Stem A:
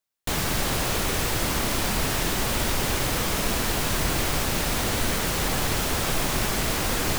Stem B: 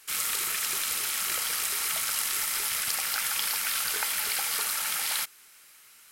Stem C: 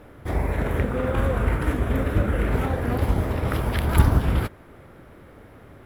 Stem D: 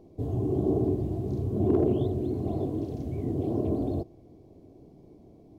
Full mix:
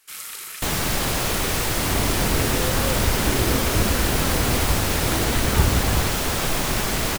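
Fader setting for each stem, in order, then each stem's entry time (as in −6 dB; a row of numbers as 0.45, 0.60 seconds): +2.0, −5.5, −2.5, −6.0 decibels; 0.35, 0.00, 1.60, 1.65 seconds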